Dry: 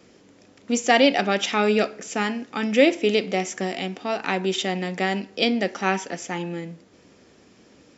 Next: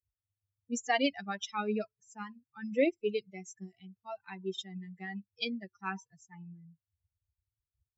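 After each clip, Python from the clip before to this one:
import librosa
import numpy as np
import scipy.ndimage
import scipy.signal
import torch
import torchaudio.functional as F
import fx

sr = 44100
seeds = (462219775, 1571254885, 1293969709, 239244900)

y = fx.bin_expand(x, sr, power=3.0)
y = y * 10.0 ** (-7.5 / 20.0)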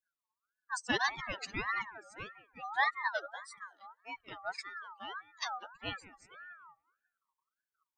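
y = fx.echo_wet_bandpass(x, sr, ms=185, feedback_pct=33, hz=510.0, wet_db=-12)
y = fx.ring_lfo(y, sr, carrier_hz=1300.0, swing_pct=25, hz=1.7)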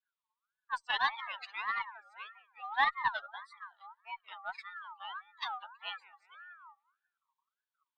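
y = fx.ladder_highpass(x, sr, hz=810.0, resonance_pct=55)
y = fx.cheby_harmonics(y, sr, harmonics=(2, 7), levels_db=(-23, -30), full_scale_db=-23.0)
y = fx.high_shelf_res(y, sr, hz=4800.0, db=-10.0, q=3.0)
y = y * 10.0 ** (6.5 / 20.0)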